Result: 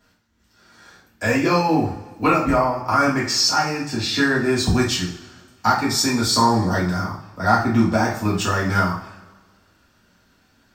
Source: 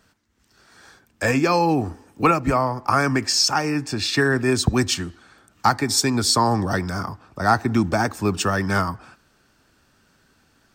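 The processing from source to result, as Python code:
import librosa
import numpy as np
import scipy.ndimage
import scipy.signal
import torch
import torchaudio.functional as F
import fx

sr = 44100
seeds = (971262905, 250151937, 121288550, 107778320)

y = fx.peak_eq(x, sr, hz=9000.0, db=-7.5, octaves=0.42)
y = fx.rev_double_slope(y, sr, seeds[0], early_s=0.43, late_s=1.5, knee_db=-18, drr_db=-6.0)
y = y * librosa.db_to_amplitude(-5.5)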